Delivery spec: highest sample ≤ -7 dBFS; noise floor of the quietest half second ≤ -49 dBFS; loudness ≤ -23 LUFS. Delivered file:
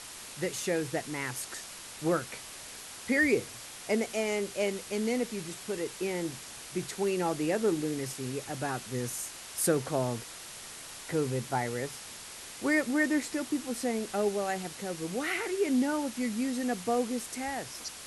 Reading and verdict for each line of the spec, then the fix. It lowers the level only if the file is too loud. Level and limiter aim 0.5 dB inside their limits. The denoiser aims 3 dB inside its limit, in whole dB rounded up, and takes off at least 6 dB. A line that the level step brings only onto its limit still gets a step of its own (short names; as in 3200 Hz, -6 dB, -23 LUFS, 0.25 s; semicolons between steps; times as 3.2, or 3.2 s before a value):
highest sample -13.5 dBFS: OK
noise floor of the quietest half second -45 dBFS: fail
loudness -32.0 LUFS: OK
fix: denoiser 7 dB, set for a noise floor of -45 dBFS